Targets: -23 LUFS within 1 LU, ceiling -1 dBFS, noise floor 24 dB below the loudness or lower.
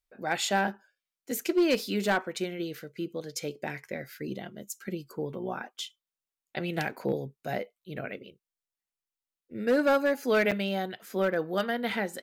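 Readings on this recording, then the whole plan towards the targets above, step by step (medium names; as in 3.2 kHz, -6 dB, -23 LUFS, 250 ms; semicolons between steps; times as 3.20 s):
clipped samples 0.5%; clipping level -18.0 dBFS; dropouts 1; longest dropout 6.6 ms; loudness -30.5 LUFS; peak level -18.0 dBFS; loudness target -23.0 LUFS
-> clip repair -18 dBFS; interpolate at 10.51 s, 6.6 ms; trim +7.5 dB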